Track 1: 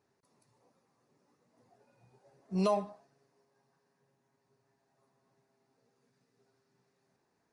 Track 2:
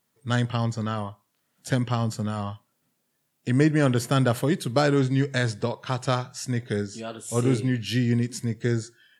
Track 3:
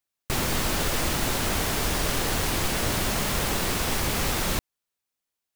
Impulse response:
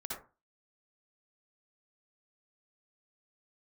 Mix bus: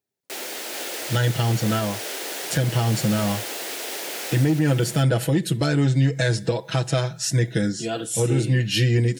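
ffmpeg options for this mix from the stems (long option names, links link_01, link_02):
-filter_complex "[0:a]volume=-12dB[link_01];[1:a]aecho=1:1:6.1:0.98,acontrast=88,adelay=850,volume=-0.5dB[link_02];[2:a]highpass=frequency=350:width=0.5412,highpass=frequency=350:width=1.3066,volume=-3.5dB,asplit=2[link_03][link_04];[link_04]volume=-4.5dB,aecho=0:1:437:1[link_05];[link_01][link_02][link_03][link_05]amix=inputs=4:normalize=0,highpass=42,equalizer=frequency=1100:width_type=o:width=0.51:gain=-10.5,alimiter=limit=-11.5dB:level=0:latency=1:release=264"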